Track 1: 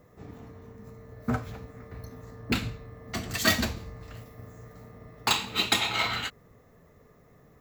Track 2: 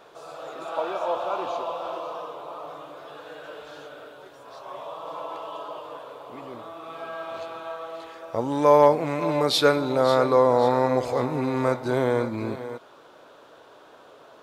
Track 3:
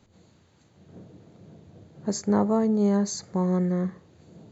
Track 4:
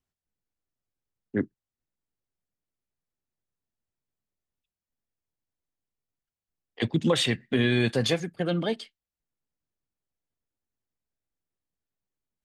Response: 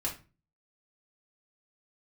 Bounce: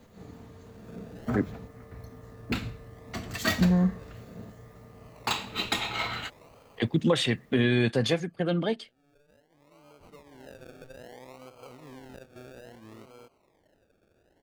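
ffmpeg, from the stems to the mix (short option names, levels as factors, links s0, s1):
-filter_complex "[0:a]acrusher=bits=9:mix=0:aa=0.000001,volume=0.75[s0];[1:a]acompressor=threshold=0.0447:ratio=6,acrusher=samples=34:mix=1:aa=0.000001:lfo=1:lforange=20.4:lforate=0.61,adelay=500,volume=0.158[s1];[2:a]aecho=1:1:4.4:0.85,volume=1.12,asplit=3[s2][s3][s4];[s2]atrim=end=1.68,asetpts=PTS-STARTPTS,afade=t=out:st=1.676:d=0.004:c=hsin[s5];[s3]atrim=start=1.68:end=3.61,asetpts=PTS-STARTPTS,volume=0[s6];[s4]atrim=start=3.61,asetpts=PTS-STARTPTS,afade=t=in:d=0.004:c=hsin[s7];[s5][s6][s7]concat=n=3:v=0:a=1[s8];[3:a]volume=1,asplit=2[s9][s10];[s10]apad=whole_len=658400[s11];[s1][s11]sidechaincompress=threshold=0.00398:ratio=8:attack=16:release=1080[s12];[s0][s12][s8][s9]amix=inputs=4:normalize=0,highshelf=f=3800:g=-5.5"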